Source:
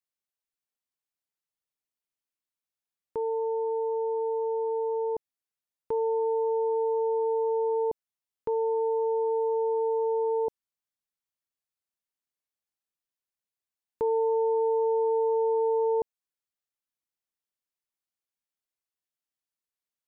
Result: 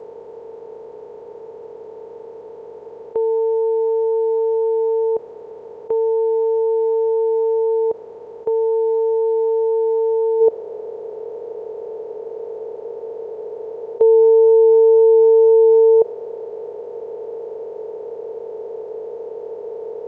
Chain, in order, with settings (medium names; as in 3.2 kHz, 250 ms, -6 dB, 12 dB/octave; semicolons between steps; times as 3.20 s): spectral levelling over time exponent 0.2; high-pass 72 Hz 12 dB/octave; high-order bell 520 Hz +8 dB 1.1 oct, from 10.40 s +14.5 dB; G.722 64 kbps 16 kHz